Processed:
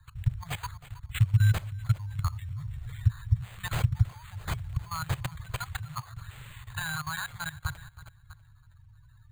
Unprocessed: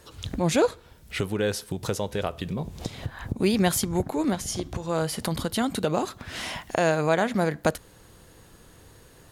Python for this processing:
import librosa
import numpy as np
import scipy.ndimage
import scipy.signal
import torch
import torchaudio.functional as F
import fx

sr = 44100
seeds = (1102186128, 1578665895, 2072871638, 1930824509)

p1 = fx.spec_quant(x, sr, step_db=30)
p2 = scipy.signal.sosfilt(scipy.signal.ellip(3, 1.0, 60, [110.0, 1100.0], 'bandstop', fs=sr, output='sos'), p1)
p3 = fx.env_lowpass(p2, sr, base_hz=2400.0, full_db=-30.5)
p4 = np.repeat(p3[::8], 8)[:len(p3)]
p5 = p4 + fx.echo_feedback(p4, sr, ms=322, feedback_pct=47, wet_db=-16.5, dry=0)
p6 = fx.level_steps(p5, sr, step_db=17)
y = fx.low_shelf_res(p6, sr, hz=180.0, db=11.5, q=3.0)